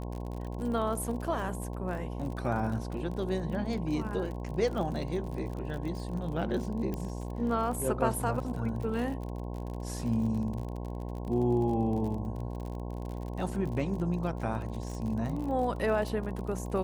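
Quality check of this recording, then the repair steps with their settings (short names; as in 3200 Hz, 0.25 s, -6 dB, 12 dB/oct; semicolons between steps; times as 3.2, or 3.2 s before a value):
buzz 60 Hz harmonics 18 -37 dBFS
crackle 44/s -37 dBFS
6.94 pop -22 dBFS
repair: de-click; de-hum 60 Hz, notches 18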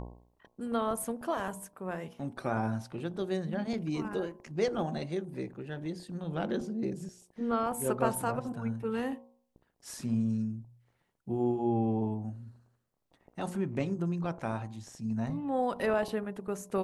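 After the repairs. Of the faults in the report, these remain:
none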